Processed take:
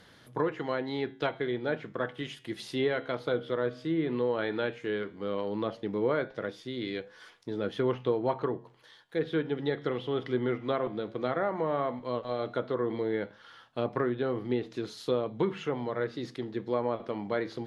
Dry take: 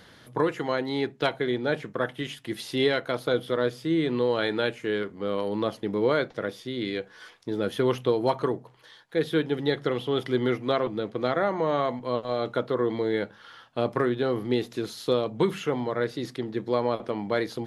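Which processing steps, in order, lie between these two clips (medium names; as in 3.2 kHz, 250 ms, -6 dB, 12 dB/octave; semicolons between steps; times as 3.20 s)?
flange 0.14 Hz, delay 6.8 ms, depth 7.3 ms, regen -86%; low-pass that closes with the level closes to 2.3 kHz, closed at -25 dBFS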